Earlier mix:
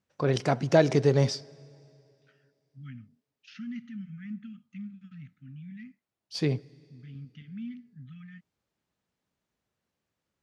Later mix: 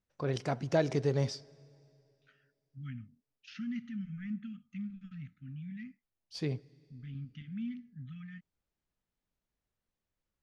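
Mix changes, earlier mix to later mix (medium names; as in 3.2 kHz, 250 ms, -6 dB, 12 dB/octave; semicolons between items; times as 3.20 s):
first voice -8.0 dB; master: remove high-pass 100 Hz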